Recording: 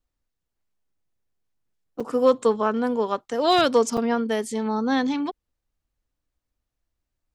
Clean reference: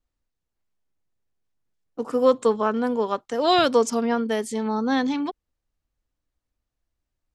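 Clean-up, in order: clip repair -9 dBFS; interpolate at 2.00/3.97 s, 5.2 ms

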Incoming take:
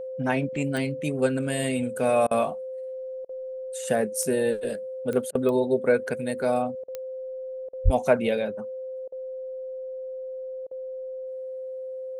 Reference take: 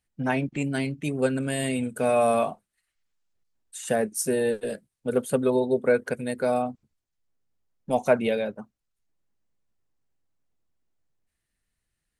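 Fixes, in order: de-click; band-stop 520 Hz, Q 30; 7.84–7.96 s: high-pass 140 Hz 24 dB/octave; interpolate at 2.27/3.25/5.31/6.84/7.69/9.08/10.67 s, 40 ms

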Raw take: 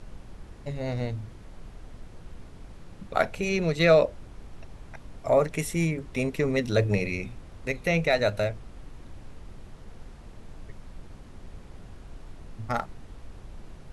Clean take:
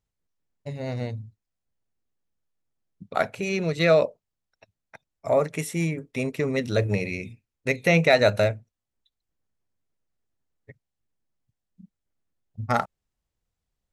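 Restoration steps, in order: noise print and reduce 30 dB; gain correction +5.5 dB, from 7.38 s

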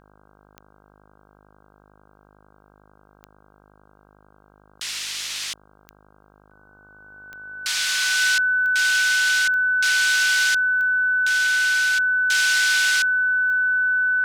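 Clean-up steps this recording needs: de-click; de-hum 51.1 Hz, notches 31; band-stop 1.5 kHz, Q 30

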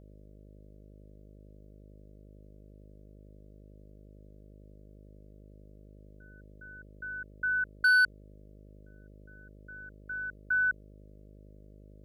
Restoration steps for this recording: clip repair -20 dBFS; de-hum 51.1 Hz, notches 12

